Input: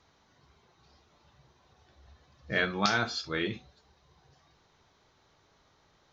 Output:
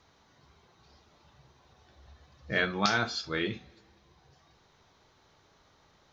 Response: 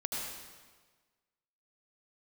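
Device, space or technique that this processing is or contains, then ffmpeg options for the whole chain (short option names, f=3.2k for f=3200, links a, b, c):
ducked reverb: -filter_complex "[0:a]asplit=3[a][b][c];[1:a]atrim=start_sample=2205[d];[b][d]afir=irnorm=-1:irlink=0[e];[c]apad=whole_len=269988[f];[e][f]sidechaincompress=threshold=-48dB:ratio=4:attack=16:release=890,volume=-11dB[g];[a][g]amix=inputs=2:normalize=0"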